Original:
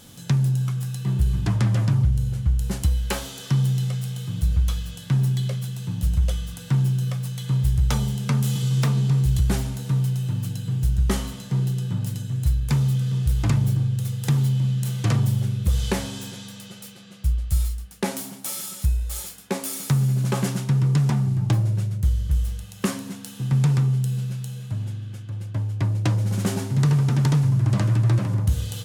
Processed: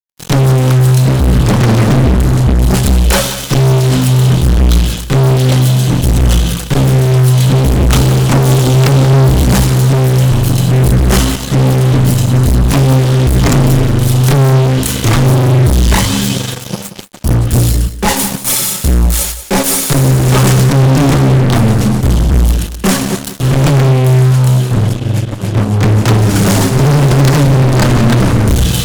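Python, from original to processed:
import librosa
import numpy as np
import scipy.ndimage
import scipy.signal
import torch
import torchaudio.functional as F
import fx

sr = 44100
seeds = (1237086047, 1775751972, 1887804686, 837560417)

p1 = fx.cheby_harmonics(x, sr, harmonics=(4,), levels_db=(-12,), full_scale_db=-10.0)
p2 = fx.chorus_voices(p1, sr, voices=6, hz=0.49, base_ms=28, depth_ms=4.1, mix_pct=65)
p3 = fx.fuzz(p2, sr, gain_db=33.0, gate_db=-40.0)
p4 = p3 + fx.echo_single(p3, sr, ms=180, db=-13.0, dry=0)
y = p4 * 10.0 ** (6.5 / 20.0)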